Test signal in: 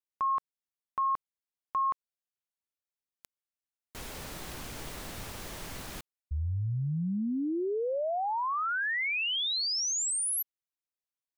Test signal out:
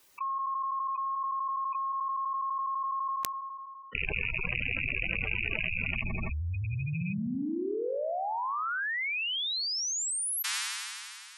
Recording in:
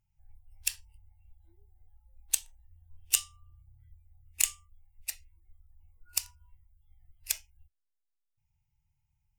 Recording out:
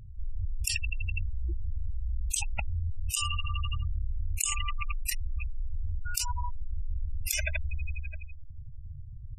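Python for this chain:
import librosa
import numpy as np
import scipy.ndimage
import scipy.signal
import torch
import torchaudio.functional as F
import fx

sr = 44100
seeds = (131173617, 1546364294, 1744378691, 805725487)

p1 = fx.rattle_buzz(x, sr, strikes_db=-47.0, level_db=-19.0)
p2 = p1 + fx.echo_wet_lowpass(p1, sr, ms=83, feedback_pct=80, hz=1400.0, wet_db=-6.5, dry=0)
p3 = fx.spec_gate(p2, sr, threshold_db=-10, keep='strong')
p4 = fx.env_flatten(p3, sr, amount_pct=100)
y = p4 * librosa.db_to_amplitude(-6.5)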